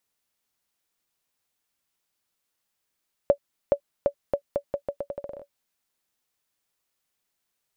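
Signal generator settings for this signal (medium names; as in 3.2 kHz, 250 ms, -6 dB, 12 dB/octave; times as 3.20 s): bouncing ball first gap 0.42 s, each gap 0.81, 568 Hz, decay 81 ms -7.5 dBFS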